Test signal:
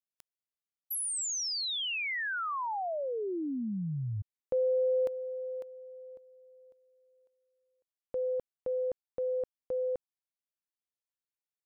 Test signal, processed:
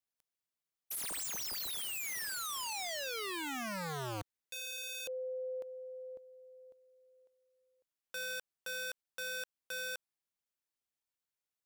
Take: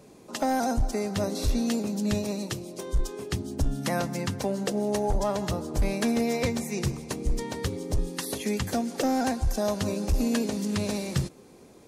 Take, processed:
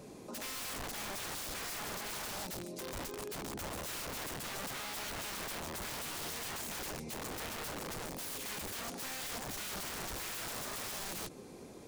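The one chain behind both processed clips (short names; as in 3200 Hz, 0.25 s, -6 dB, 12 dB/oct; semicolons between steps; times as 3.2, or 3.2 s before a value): wrapped overs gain 31 dB; limiter -37.5 dBFS; gain +1 dB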